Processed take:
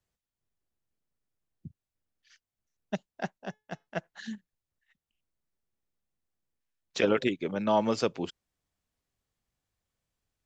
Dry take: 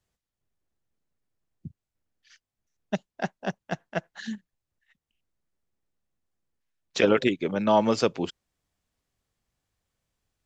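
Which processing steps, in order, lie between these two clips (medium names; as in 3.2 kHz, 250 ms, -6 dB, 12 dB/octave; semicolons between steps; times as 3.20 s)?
3.38–3.87 s: feedback comb 430 Hz, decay 0.28 s, harmonics all, mix 40%; trim -4.5 dB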